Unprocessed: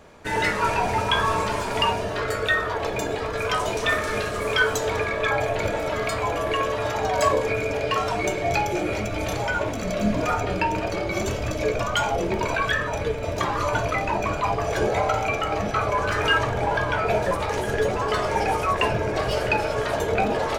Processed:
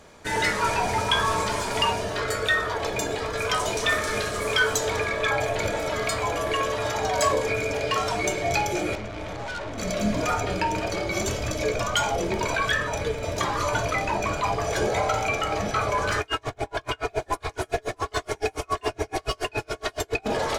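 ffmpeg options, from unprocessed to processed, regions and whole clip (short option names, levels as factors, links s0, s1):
-filter_complex "[0:a]asettb=1/sr,asplit=3[s0][s1][s2];[s0]atrim=end=8.954[s3];[s1]atrim=start=8.95:end=9.78,asetpts=PTS-STARTPTS,afade=t=in:d=0.004:c=qsin,afade=t=out:st=0.826:d=0.004:c=qsin,acrossover=split=2500[s4][s5];[s5]acompressor=threshold=0.00794:ratio=4:attack=1:release=60[s6];[s4][s6]amix=inputs=2:normalize=0,aemphasis=mode=reproduction:type=50kf,aeval=exprs='(tanh(28.2*val(0)+0.4)-tanh(0.4))/28.2':c=same[s7];[s2]atrim=start=9.776[s8];[s3][s7]acrossfade=d=0.004:c1=hsin:c2=qsin[s9];[s9][s8]acrossfade=d=0.004:c1=qsin:c2=hsin,asettb=1/sr,asplit=3[s10][s11][s12];[s10]atrim=end=16.204[s13];[s11]atrim=start=16.2:end=20.26,asetpts=PTS-STARTPTS,afade=t=in:d=0.004:c=qsin,afade=t=out:st=4.056:d=0.004:c=qsin,aecho=1:1:2.8:0.66,atrim=end_sample=179046,aecho=1:1:634:0.531,atrim=end_sample=179046,aeval=exprs='val(0)*pow(10,-38*(0.5-0.5*cos(2*PI*7.1*n/s))/20)':c=same[s14];[s12]atrim=start=20.256[s15];[s13][s14]acrossfade=d=0.004:c1=hsin:c2=qsin[s16];[s16][s15]acrossfade=d=0.004:c1=qsin:c2=hsin,equalizer=f=7500:w=0.41:g=7,bandreject=f=2700:w=19,acontrast=72,volume=0.376"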